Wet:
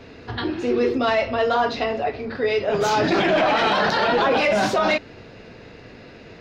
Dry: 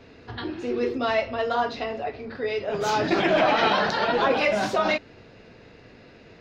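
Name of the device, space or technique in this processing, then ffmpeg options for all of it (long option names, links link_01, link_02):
soft clipper into limiter: -af "asoftclip=type=tanh:threshold=-12dB,alimiter=limit=-18.5dB:level=0:latency=1:release=17,volume=6.5dB"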